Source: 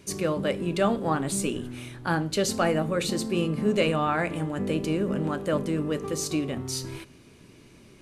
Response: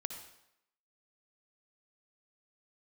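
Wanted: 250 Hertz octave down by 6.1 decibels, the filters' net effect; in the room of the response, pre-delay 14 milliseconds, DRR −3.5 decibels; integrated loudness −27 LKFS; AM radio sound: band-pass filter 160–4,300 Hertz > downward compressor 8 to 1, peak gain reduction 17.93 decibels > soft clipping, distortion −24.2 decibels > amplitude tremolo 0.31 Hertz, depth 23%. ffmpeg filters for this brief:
-filter_complex "[0:a]equalizer=frequency=250:width_type=o:gain=-7.5,asplit=2[link_01][link_02];[1:a]atrim=start_sample=2205,adelay=14[link_03];[link_02][link_03]afir=irnorm=-1:irlink=0,volume=4.5dB[link_04];[link_01][link_04]amix=inputs=2:normalize=0,highpass=160,lowpass=4300,acompressor=threshold=-33dB:ratio=8,asoftclip=threshold=-25dB,tremolo=f=0.31:d=0.23,volume=11dB"

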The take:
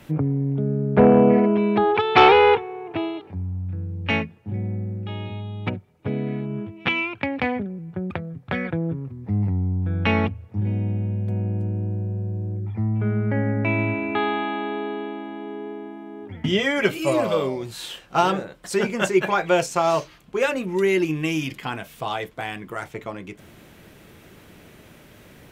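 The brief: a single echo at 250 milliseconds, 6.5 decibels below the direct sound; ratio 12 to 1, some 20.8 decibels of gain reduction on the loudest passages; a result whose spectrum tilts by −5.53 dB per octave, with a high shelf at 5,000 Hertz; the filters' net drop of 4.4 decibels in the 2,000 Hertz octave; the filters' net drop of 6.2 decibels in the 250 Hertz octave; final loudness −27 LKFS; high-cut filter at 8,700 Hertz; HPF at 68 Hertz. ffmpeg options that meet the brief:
ffmpeg -i in.wav -af "highpass=68,lowpass=8700,equalizer=frequency=250:width_type=o:gain=-8.5,equalizer=frequency=2000:width_type=o:gain=-4.5,highshelf=frequency=5000:gain=-5.5,acompressor=threshold=-32dB:ratio=12,aecho=1:1:250:0.473,volume=9dB" out.wav

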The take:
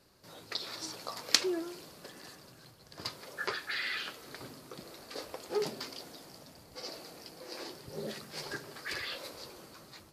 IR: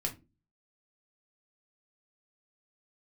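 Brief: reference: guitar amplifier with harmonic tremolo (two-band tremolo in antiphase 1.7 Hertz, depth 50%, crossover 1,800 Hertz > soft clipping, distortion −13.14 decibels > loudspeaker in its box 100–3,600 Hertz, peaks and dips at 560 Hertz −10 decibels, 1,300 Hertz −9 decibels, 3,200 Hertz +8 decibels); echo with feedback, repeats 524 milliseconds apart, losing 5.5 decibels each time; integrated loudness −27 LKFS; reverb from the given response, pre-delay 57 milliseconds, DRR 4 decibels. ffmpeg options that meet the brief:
-filter_complex "[0:a]aecho=1:1:524|1048|1572|2096|2620|3144|3668:0.531|0.281|0.149|0.079|0.0419|0.0222|0.0118,asplit=2[link_01][link_02];[1:a]atrim=start_sample=2205,adelay=57[link_03];[link_02][link_03]afir=irnorm=-1:irlink=0,volume=-6.5dB[link_04];[link_01][link_04]amix=inputs=2:normalize=0,acrossover=split=1800[link_05][link_06];[link_05]aeval=exprs='val(0)*(1-0.5/2+0.5/2*cos(2*PI*1.7*n/s))':channel_layout=same[link_07];[link_06]aeval=exprs='val(0)*(1-0.5/2-0.5/2*cos(2*PI*1.7*n/s))':channel_layout=same[link_08];[link_07][link_08]amix=inputs=2:normalize=0,asoftclip=threshold=-17dB,highpass=100,equalizer=frequency=560:width_type=q:width=4:gain=-10,equalizer=frequency=1300:width_type=q:width=4:gain=-9,equalizer=frequency=3200:width_type=q:width=4:gain=8,lowpass=frequency=3600:width=0.5412,lowpass=frequency=3600:width=1.3066,volume=14dB"

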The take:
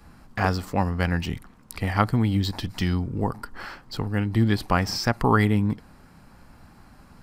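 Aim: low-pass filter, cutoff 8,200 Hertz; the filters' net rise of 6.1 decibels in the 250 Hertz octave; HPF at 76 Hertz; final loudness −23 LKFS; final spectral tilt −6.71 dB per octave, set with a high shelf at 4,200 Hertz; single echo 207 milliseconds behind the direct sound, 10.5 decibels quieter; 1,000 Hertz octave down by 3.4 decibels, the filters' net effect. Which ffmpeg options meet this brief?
ffmpeg -i in.wav -af "highpass=76,lowpass=8200,equalizer=frequency=250:width_type=o:gain=8,equalizer=frequency=1000:width_type=o:gain=-4.5,highshelf=frequency=4200:gain=-7.5,aecho=1:1:207:0.299,volume=-1.5dB" out.wav

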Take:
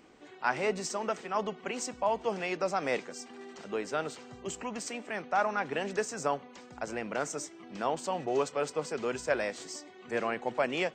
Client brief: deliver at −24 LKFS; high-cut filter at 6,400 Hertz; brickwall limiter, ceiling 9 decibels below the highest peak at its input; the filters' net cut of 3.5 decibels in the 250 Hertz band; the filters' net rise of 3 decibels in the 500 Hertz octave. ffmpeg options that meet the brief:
ffmpeg -i in.wav -af "lowpass=6400,equalizer=frequency=250:width_type=o:gain=-7.5,equalizer=frequency=500:width_type=o:gain=5.5,volume=11dB,alimiter=limit=-11.5dB:level=0:latency=1" out.wav

